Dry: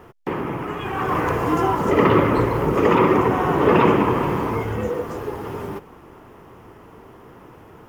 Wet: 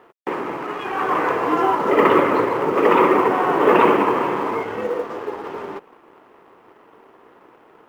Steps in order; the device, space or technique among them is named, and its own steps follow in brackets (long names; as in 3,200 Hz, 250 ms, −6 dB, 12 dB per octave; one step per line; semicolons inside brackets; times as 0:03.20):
phone line with mismatched companding (band-pass filter 340–3,300 Hz; mu-law and A-law mismatch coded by A)
level +3.5 dB